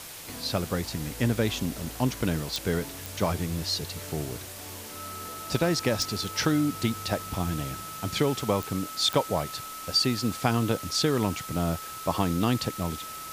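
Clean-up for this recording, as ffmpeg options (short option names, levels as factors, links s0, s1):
-af "adeclick=t=4,bandreject=f=1300:w=30,afwtdn=0.0089"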